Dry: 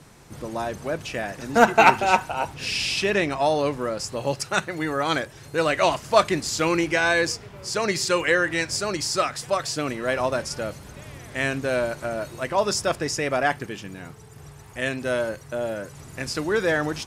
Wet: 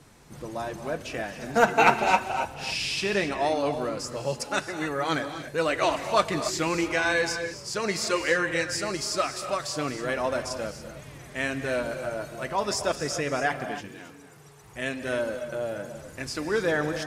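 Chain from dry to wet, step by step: 13.88–14.63 HPF 260 Hz 6 dB/oct; non-linear reverb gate 0.31 s rising, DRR 8.5 dB; flange 0.86 Hz, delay 2.5 ms, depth 4.7 ms, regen -51%

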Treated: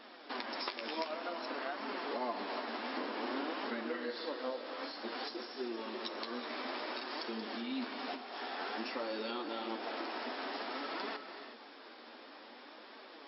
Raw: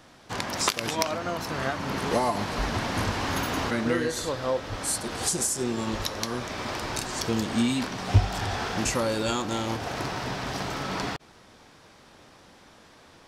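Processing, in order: 2.97–3.53 bell 360 Hz +7.5 dB 2 oct; compressor 3:1, threshold -40 dBFS, peak gain reduction 19.5 dB; flange 0.54 Hz, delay 4.3 ms, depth 9 ms, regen +37%; brick-wall FIR band-pass 220–5500 Hz; non-linear reverb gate 0.4 s rising, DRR 8 dB; gain +4 dB

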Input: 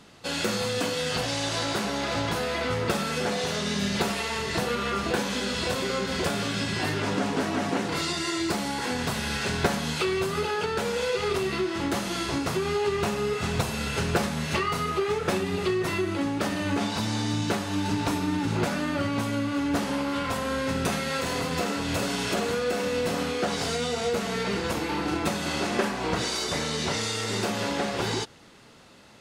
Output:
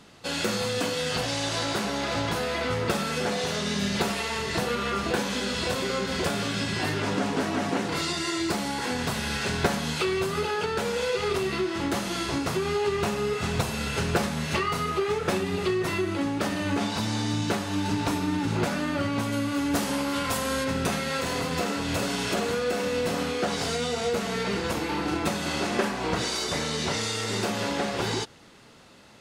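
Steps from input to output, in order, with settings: 19.31–20.63 high shelf 8200 Hz -> 4700 Hz +11.5 dB

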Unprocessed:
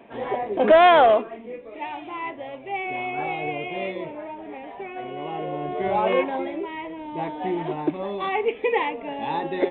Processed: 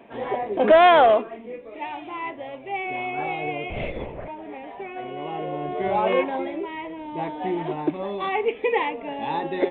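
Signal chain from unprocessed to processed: 3.7–4.28 LPC vocoder at 8 kHz whisper

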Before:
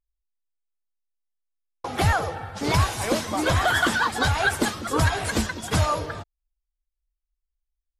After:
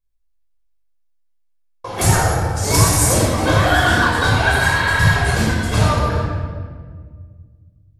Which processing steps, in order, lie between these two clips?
2.01–3.14 resonant high shelf 5000 Hz +13.5 dB, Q 1.5; 4.56–5.05 spectral repair 200–4400 Hz after; shoebox room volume 2100 m³, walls mixed, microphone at 5.4 m; gain -2.5 dB

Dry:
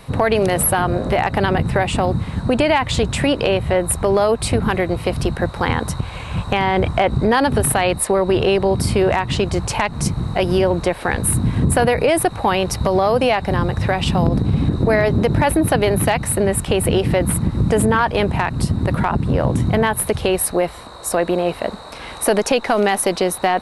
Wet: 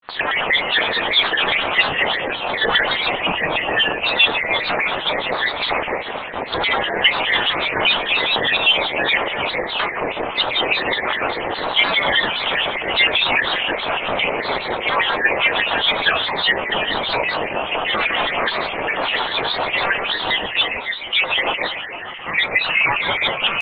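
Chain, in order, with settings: rattling part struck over -25 dBFS, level -9 dBFS; shoebox room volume 140 m³, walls mixed, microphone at 0.84 m; LFO band-pass square 4.9 Hz 670–2100 Hz; inverted band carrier 3100 Hz; echo with dull and thin repeats by turns 0.156 s, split 2000 Hz, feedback 68%, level -4 dB; grains 0.112 s, grains 29/s, spray 14 ms, pitch spread up and down by 7 st; gain +4.5 dB

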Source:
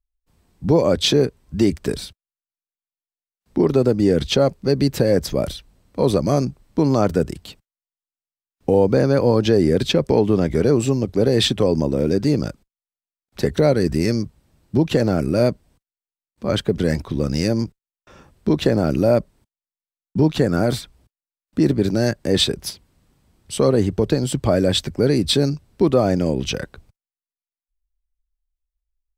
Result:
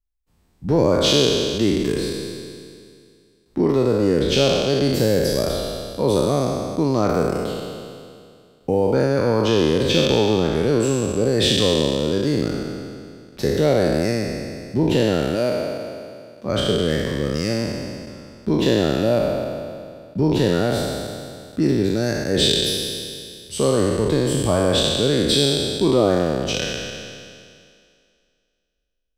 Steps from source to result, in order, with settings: spectral trails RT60 2.26 s; 15.35–16.46 HPF 230 Hz 6 dB/oct; gain -4.5 dB

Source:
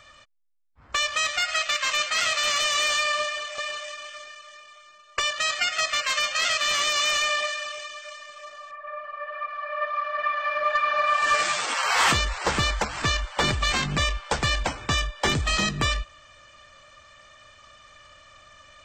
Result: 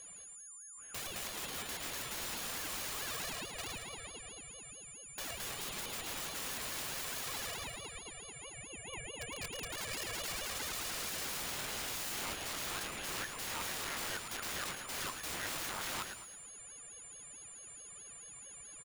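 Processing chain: Wiener smoothing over 9 samples; wrapped overs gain 26.5 dB; on a send: feedback echo 0.11 s, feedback 42%, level -7 dB; on the sum: whine 8300 Hz -39 dBFS; ring modulator with a swept carrier 1400 Hz, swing 25%, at 4.6 Hz; gain -7 dB

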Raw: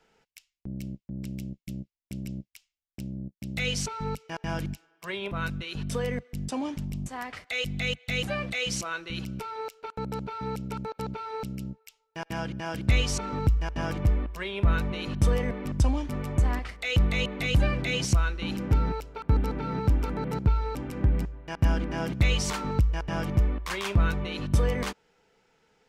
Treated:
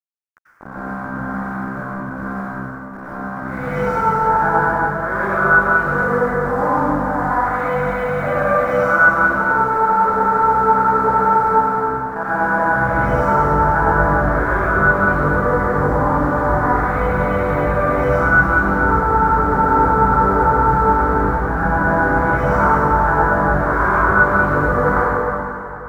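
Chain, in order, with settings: spectral swells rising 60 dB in 0.50 s; bell 630 Hz +11.5 dB 3 oct; bit-crush 5-bit; limiter -13 dBFS, peak gain reduction 7 dB; EQ curve 390 Hz 0 dB, 1500 Hz +12 dB, 2700 Hz -22 dB; plate-style reverb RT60 3 s, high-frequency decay 0.8×, pre-delay 80 ms, DRR -9.5 dB; gain -6 dB

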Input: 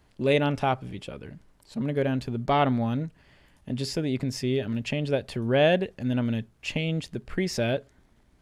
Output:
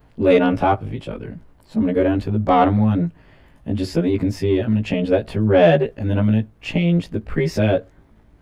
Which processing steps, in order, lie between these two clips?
short-time reversal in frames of 36 ms; bell 7200 Hz -12.5 dB 2.7 oct; in parallel at -3 dB: soft clip -23 dBFS, distortion -15 dB; on the sum: gain +8.5 dB

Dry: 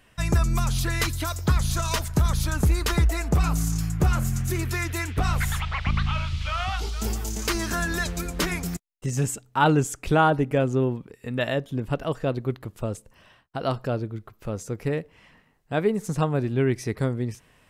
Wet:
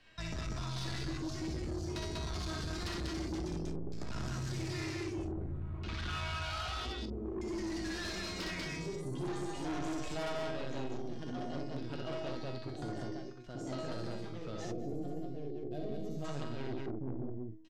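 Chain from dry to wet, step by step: sample leveller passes 1; in parallel at -4 dB: wavefolder -19 dBFS; on the sum: resonator 320 Hz, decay 0.65 s, mix 90%; LFO low-pass square 0.51 Hz 340–4700 Hz; echoes that change speed 0.594 s, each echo +2 st, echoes 2, each echo -6 dB; on a send: loudspeakers at several distances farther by 21 m -2 dB, 66 m -2 dB, 81 m -12 dB; on the sum: soft clip -28.5 dBFS, distortion -9 dB; spectral gain 14.72–16.25, 780–11000 Hz -16 dB; three-band squash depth 40%; gain -5 dB

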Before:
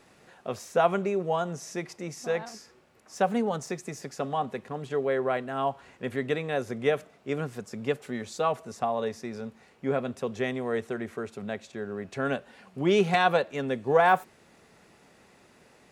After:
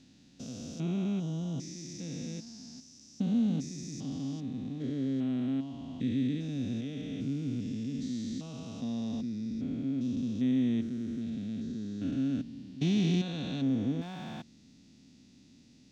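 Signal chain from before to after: stepped spectrum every 0.4 s; EQ curve 190 Hz 0 dB, 270 Hz +7 dB, 400 Hz -17 dB, 1100 Hz -24 dB, 1700 Hz -20 dB, 3700 Hz -2 dB, 6000 Hz 0 dB, 10000 Hz -19 dB; gain +4 dB

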